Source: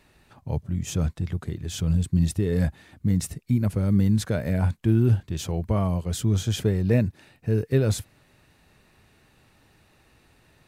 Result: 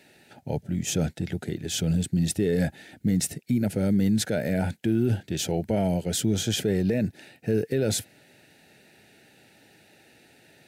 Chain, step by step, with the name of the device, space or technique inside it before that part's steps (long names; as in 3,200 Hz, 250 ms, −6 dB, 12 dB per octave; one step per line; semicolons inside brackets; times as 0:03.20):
PA system with an anti-feedback notch (high-pass filter 190 Hz 12 dB per octave; Butterworth band-reject 1,100 Hz, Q 2; brickwall limiter −21 dBFS, peak gain reduction 9.5 dB)
level +5.5 dB